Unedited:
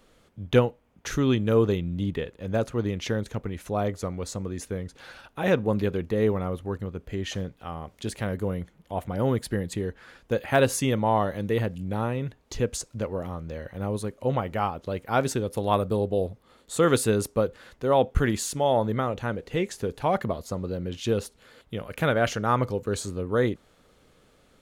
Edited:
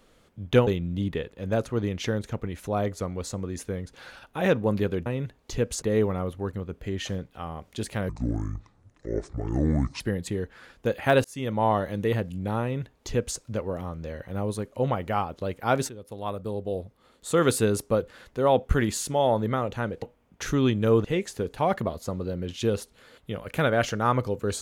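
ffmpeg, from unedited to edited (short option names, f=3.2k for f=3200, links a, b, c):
-filter_complex "[0:a]asplit=10[a][b][c][d][e][f][g][h][i][j];[a]atrim=end=0.672[k];[b]atrim=start=1.688:end=6.082[l];[c]atrim=start=12.078:end=12.842[m];[d]atrim=start=6.078:end=8.354[n];[e]atrim=start=8.35:end=9.46,asetpts=PTS-STARTPTS,asetrate=25578,aresample=44100,atrim=end_sample=84398,asetpts=PTS-STARTPTS[o];[f]atrim=start=9.456:end=10.7,asetpts=PTS-STARTPTS,afade=t=out:st=1.24:d=0.004:c=hsin[p];[g]atrim=start=10.7:end=15.35,asetpts=PTS-STARTPTS,afade=t=in:d=0.4,afade=t=out:st=4.646:d=0.004:c=hsin:silence=0.16788[q];[h]atrim=start=15.35:end=19.482,asetpts=PTS-STARTPTS,afade=t=in:d=1.7:silence=0.16788[r];[i]atrim=start=0.668:end=1.692[s];[j]atrim=start=19.478[t];[k][l]acrossfade=d=0.004:c1=hsin:c2=hsin[u];[u][m]acrossfade=d=0.004:c1=hsin:c2=hsin[v];[v][n]acrossfade=d=0.004:c1=hsin:c2=hsin[w];[w][o]acrossfade=d=0.004:c1=hsin:c2=hsin[x];[p][q][r]concat=n=3:v=0:a=1[y];[x][y]acrossfade=d=0.004:c1=hsin:c2=hsin[z];[z][s]acrossfade=d=0.004:c1=hsin:c2=hsin[aa];[aa][t]acrossfade=d=0.004:c1=hsin:c2=hsin"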